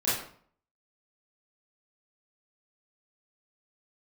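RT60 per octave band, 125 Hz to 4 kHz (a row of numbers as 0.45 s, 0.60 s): 0.65 s, 0.60 s, 0.55 s, 0.55 s, 0.45 s, 0.40 s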